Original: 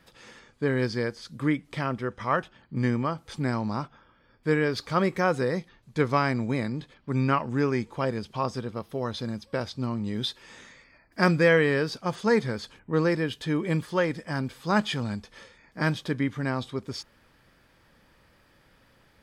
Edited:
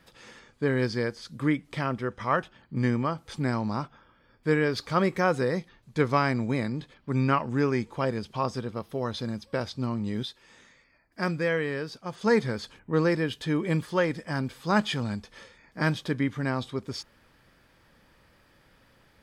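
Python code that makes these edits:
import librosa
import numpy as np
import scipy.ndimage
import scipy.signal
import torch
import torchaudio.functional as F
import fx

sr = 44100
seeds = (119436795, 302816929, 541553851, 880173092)

y = fx.edit(x, sr, fx.clip_gain(start_s=10.23, length_s=1.98, db=-7.0), tone=tone)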